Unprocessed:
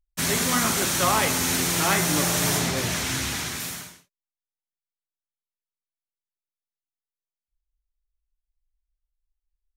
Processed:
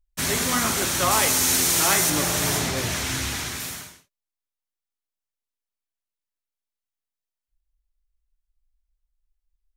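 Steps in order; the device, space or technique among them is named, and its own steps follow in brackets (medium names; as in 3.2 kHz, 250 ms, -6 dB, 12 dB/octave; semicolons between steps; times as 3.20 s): low shelf boost with a cut just above (bass shelf 85 Hz +6.5 dB; peaking EQ 170 Hz -5 dB 0.65 oct); 1.11–2.10 s: tone controls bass -3 dB, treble +6 dB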